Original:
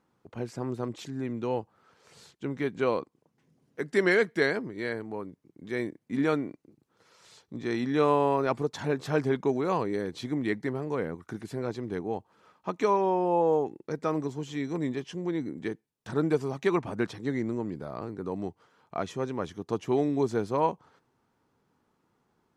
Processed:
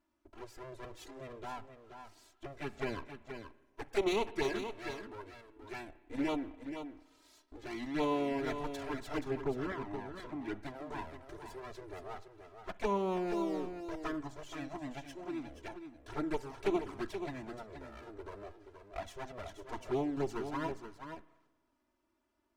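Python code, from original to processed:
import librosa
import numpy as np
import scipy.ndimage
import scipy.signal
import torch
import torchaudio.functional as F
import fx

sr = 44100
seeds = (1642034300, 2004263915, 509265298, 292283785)

p1 = fx.lower_of_two(x, sr, delay_ms=3.0)
p2 = fx.env_flanger(p1, sr, rest_ms=3.4, full_db=-23.0)
p3 = fx.high_shelf(p2, sr, hz=3100.0, db=-10.0, at=(9.19, 10.59))
p4 = fx.spec_box(p3, sr, start_s=13.32, length_s=0.47, low_hz=790.0, high_hz=3500.0, gain_db=-10)
p5 = p4 + fx.echo_single(p4, sr, ms=477, db=-8.5, dry=0)
p6 = fx.rev_spring(p5, sr, rt60_s=1.2, pass_ms=(30, 50, 59), chirp_ms=80, drr_db=17.0)
y = p6 * 10.0 ** (-4.0 / 20.0)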